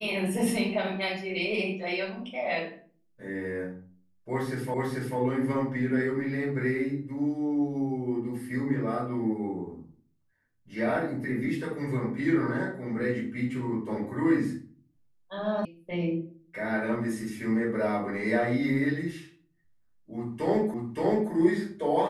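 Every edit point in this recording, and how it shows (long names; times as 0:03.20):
0:04.74: the same again, the last 0.44 s
0:15.65: cut off before it has died away
0:20.74: the same again, the last 0.57 s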